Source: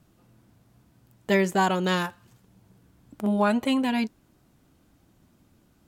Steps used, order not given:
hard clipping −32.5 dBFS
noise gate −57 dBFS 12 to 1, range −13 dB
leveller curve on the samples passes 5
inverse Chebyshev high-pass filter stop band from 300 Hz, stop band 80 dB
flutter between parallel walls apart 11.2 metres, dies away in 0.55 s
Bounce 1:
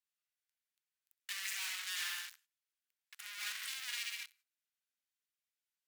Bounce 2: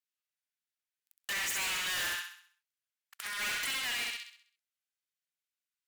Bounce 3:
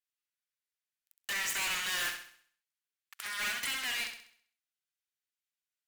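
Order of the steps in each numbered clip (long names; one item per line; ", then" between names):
flutter between parallel walls, then leveller curve on the samples, then hard clipping, then noise gate, then inverse Chebyshev high-pass filter
leveller curve on the samples, then inverse Chebyshev high-pass filter, then noise gate, then flutter between parallel walls, then hard clipping
leveller curve on the samples, then noise gate, then inverse Chebyshev high-pass filter, then hard clipping, then flutter between parallel walls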